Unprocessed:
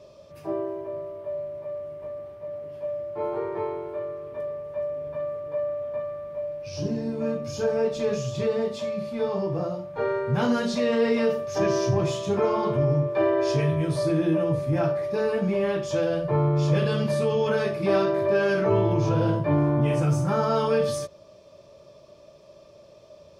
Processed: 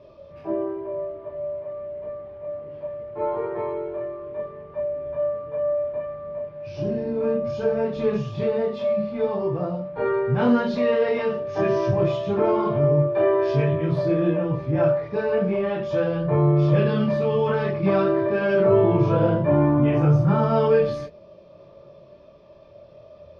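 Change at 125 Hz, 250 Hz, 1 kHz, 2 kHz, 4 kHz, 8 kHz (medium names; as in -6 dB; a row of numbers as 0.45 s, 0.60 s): +3.0 dB, +3.0 dB, +2.0 dB, +0.5 dB, -4.0 dB, under -15 dB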